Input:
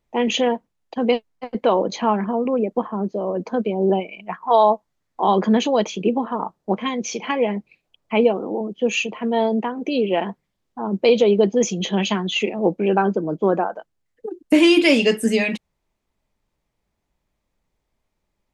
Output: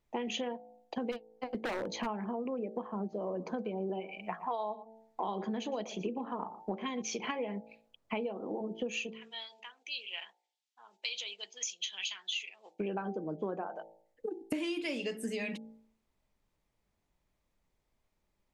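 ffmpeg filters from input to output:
ffmpeg -i in.wav -filter_complex "[0:a]asplit=3[link_01][link_02][link_03];[link_01]afade=type=out:start_time=1.11:duration=0.02[link_04];[link_02]aeval=exprs='0.178*(abs(mod(val(0)/0.178+3,4)-2)-1)':channel_layout=same,afade=type=in:start_time=1.11:duration=0.02,afade=type=out:start_time=2.05:duration=0.02[link_05];[link_03]afade=type=in:start_time=2.05:duration=0.02[link_06];[link_04][link_05][link_06]amix=inputs=3:normalize=0,asettb=1/sr,asplit=3[link_07][link_08][link_09];[link_07]atrim=end=3.014[link_10];[link_08]atrim=start=3.01:end=7.02,asetpts=PTS-STARTPTS,afade=type=in:duration=0.004:curve=qsin,afade=type=out:start_time=4.006:duration=0.004:curve=qsin,aecho=1:1:117:0.112,atrim=end_sample=176841[link_11];[link_09]atrim=start=7.016[link_12];[link_10][link_11]acrossfade=duration=0.004:curve1=hsin:curve2=qsin[link_13];[link_13][link_12]acrossfade=duration=0.004:curve1=qsin:curve2=hsin,asplit=3[link_14][link_15][link_16];[link_14]afade=type=out:start_time=9.09:duration=0.02[link_17];[link_15]asuperpass=centerf=5000:order=4:qfactor=0.8,afade=type=in:start_time=9.09:duration=0.02,afade=type=out:start_time=12.79:duration=0.02[link_18];[link_16]afade=type=in:start_time=12.79:duration=0.02[link_19];[link_17][link_18][link_19]amix=inputs=3:normalize=0,bandreject=frequency=55.59:width_type=h:width=4,bandreject=frequency=111.18:width_type=h:width=4,bandreject=frequency=166.77:width_type=h:width=4,bandreject=frequency=222.36:width_type=h:width=4,bandreject=frequency=277.95:width_type=h:width=4,bandreject=frequency=333.54:width_type=h:width=4,bandreject=frequency=389.13:width_type=h:width=4,bandreject=frequency=444.72:width_type=h:width=4,bandreject=frequency=500.31:width_type=h:width=4,bandreject=frequency=555.9:width_type=h:width=4,bandreject=frequency=611.49:width_type=h:width=4,bandreject=frequency=667.08:width_type=h:width=4,bandreject=frequency=722.67:width_type=h:width=4,bandreject=frequency=778.26:width_type=h:width=4,bandreject=frequency=833.85:width_type=h:width=4,bandreject=frequency=889.44:width_type=h:width=4,acompressor=threshold=-29dB:ratio=10,volume=-4dB" out.wav

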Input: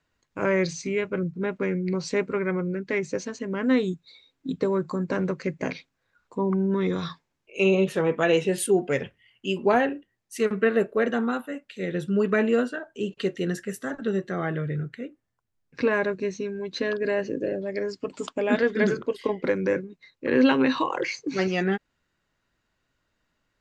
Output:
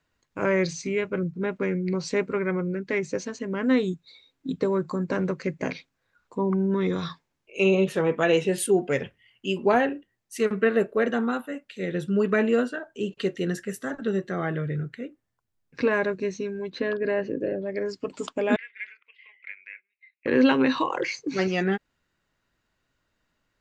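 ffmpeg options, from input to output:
ffmpeg -i in.wav -filter_complex "[0:a]asettb=1/sr,asplit=3[link_01][link_02][link_03];[link_01]atrim=end=16.704[link_04];[link_02]atrim=start=16.7:end=17.86,asetpts=PTS-STARTPTS,afade=type=in:duration=0.004:curve=qsin,afade=type=out:start_time=1.156:duration=0.004:curve=qsin,equalizer=frequency=6600:width=0.92:gain=-12.5[link_05];[link_03]atrim=start=17.856[link_06];[link_04][link_05]acrossfade=duration=0.004:curve1=hsin:curve2=qsin[link_07];[link_07][link_06]acrossfade=duration=0.004:curve1=qsin:curve2=hsin,asettb=1/sr,asplit=3[link_08][link_09][link_10];[link_08]atrim=end=18.564[link_11];[link_09]atrim=start=18.56:end=20.26,asetpts=PTS-STARTPTS,afade=type=in:duration=0.004:curve=qsin,afade=type=out:start_time=1.696:duration=0.004:curve=qsin,asuperpass=centerf=2300:order=4:qfactor=3.5[link_12];[link_10]atrim=start=20.256[link_13];[link_11][link_12]acrossfade=duration=0.004:curve1=hsin:curve2=qsin[link_14];[link_14][link_13]acrossfade=duration=0.004:curve1=qsin:curve2=hsin" out.wav

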